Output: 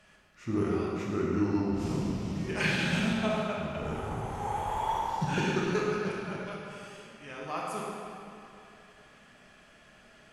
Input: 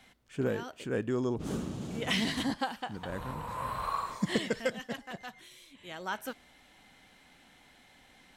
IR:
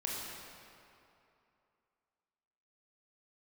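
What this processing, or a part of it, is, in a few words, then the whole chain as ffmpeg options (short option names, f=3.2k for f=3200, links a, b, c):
slowed and reverbed: -filter_complex "[0:a]asetrate=35721,aresample=44100[a];[1:a]atrim=start_sample=2205[b];[a][b]afir=irnorm=-1:irlink=0"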